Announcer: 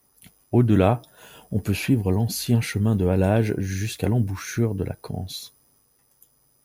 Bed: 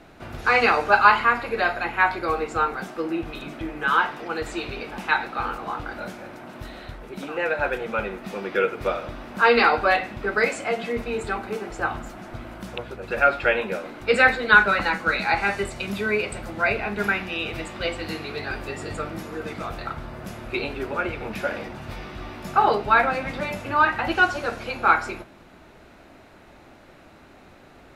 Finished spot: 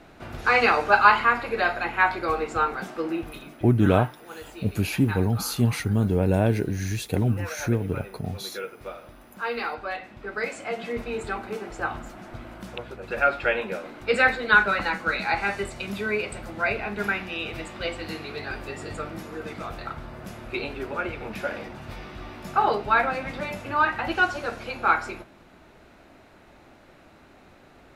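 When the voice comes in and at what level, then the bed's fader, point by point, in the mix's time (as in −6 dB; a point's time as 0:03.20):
3.10 s, −1.5 dB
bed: 0:03.11 −1 dB
0:03.73 −12.5 dB
0:09.92 −12.5 dB
0:10.97 −3 dB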